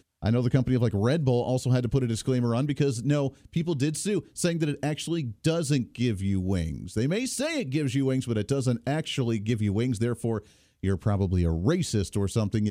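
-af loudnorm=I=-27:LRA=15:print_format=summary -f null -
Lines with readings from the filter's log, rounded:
Input Integrated:    -27.1 LUFS
Input True Peak:      -8.2 dBTP
Input LRA:             1.9 LU
Input Threshold:     -37.2 LUFS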